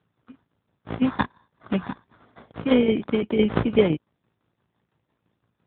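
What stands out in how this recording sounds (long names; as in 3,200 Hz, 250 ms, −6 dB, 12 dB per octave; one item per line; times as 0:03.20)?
a buzz of ramps at a fixed pitch in blocks of 16 samples
tremolo saw down 5.9 Hz, depth 65%
aliases and images of a low sample rate 2,700 Hz, jitter 0%
AMR narrowband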